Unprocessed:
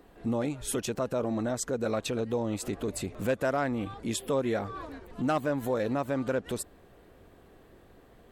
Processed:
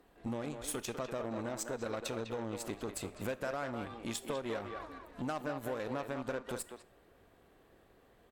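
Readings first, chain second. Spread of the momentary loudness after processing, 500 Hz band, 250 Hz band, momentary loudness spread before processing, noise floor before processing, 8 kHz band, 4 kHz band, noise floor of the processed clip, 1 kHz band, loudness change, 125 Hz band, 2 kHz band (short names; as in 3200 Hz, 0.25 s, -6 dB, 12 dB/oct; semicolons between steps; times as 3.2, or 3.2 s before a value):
4 LU, -8.5 dB, -9.5 dB, 6 LU, -57 dBFS, -6.0 dB, -5.5 dB, -65 dBFS, -7.0 dB, -8.5 dB, -9.5 dB, -6.0 dB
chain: added harmonics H 3 -20 dB, 4 -24 dB, 7 -31 dB, 8 -33 dB, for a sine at -18.5 dBFS; low shelf 480 Hz -4.5 dB; compressor 4:1, threshold -35 dBFS, peak gain reduction 8.5 dB; speakerphone echo 0.2 s, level -6 dB; Schroeder reverb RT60 0.47 s, combs from 27 ms, DRR 18 dB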